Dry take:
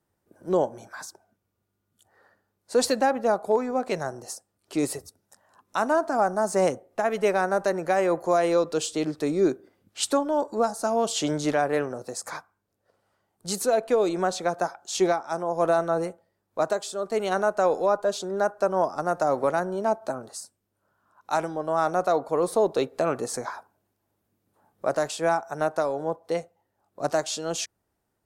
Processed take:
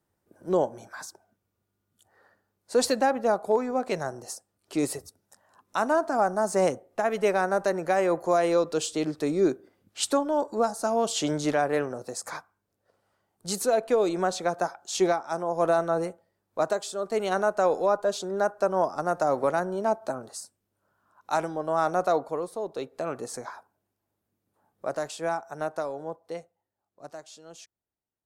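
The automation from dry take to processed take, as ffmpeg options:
-af "volume=6dB,afade=t=out:st=22.16:d=0.34:silence=0.266073,afade=t=in:st=22.5:d=0.74:silence=0.446684,afade=t=out:st=25.76:d=1.35:silence=0.251189"

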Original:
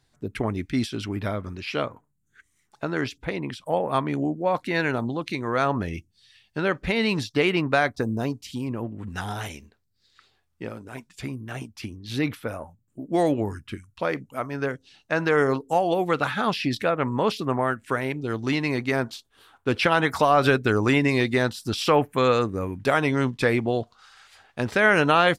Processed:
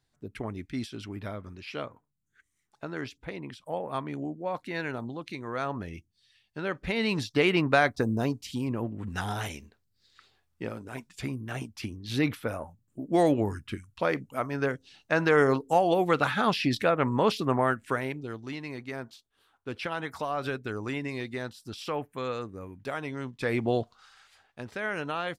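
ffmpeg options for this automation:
-af "volume=10.5dB,afade=t=in:st=6.58:d=1.03:silence=0.398107,afade=t=out:st=17.71:d=0.72:silence=0.251189,afade=t=in:st=23.36:d=0.37:silence=0.266073,afade=t=out:st=23.73:d=0.91:silence=0.237137"

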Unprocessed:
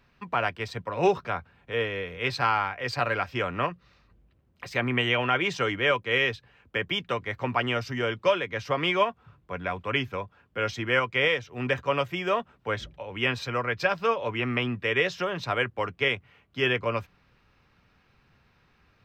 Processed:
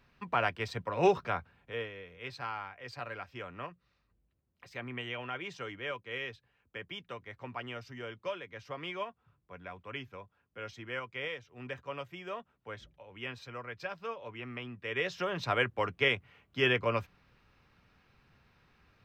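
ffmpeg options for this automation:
-af "volume=9dB,afade=t=out:st=1.35:d=0.59:silence=0.266073,afade=t=in:st=14.77:d=0.7:silence=0.251189"

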